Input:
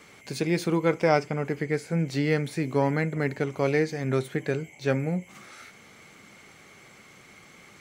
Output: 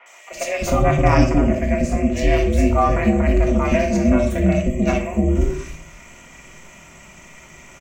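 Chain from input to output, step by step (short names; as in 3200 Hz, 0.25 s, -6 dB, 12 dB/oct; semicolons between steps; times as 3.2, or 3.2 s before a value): ripple EQ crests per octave 0.73, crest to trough 13 dB; ring modulator 210 Hz; three bands offset in time mids, highs, lows 60/310 ms, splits 520/2600 Hz; shoebox room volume 670 m³, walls furnished, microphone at 1.8 m; gain +7.5 dB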